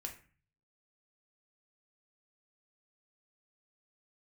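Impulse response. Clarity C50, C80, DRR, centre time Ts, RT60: 10.5 dB, 15.0 dB, 2.0 dB, 15 ms, 0.40 s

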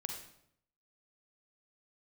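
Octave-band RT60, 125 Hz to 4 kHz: 0.90, 0.80, 0.75, 0.70, 0.60, 0.55 seconds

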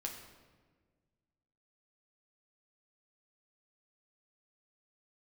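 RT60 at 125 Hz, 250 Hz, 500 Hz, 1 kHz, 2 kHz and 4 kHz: 2.2, 2.0, 1.7, 1.3, 1.2, 0.95 seconds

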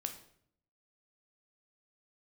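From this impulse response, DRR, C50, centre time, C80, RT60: 5.5 dB, 10.0 dB, 13 ms, 13.5 dB, 0.65 s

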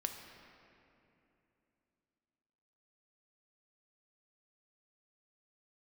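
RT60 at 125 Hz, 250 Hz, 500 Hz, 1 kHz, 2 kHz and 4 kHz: 3.5, 3.7, 3.2, 2.7, 2.6, 1.8 seconds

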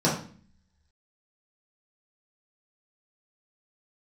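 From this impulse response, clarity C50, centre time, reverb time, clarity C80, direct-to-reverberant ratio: 5.5 dB, 33 ms, 0.45 s, 10.0 dB, −7.0 dB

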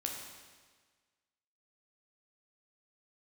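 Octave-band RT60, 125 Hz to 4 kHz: 1.5, 1.5, 1.5, 1.5, 1.5, 1.4 seconds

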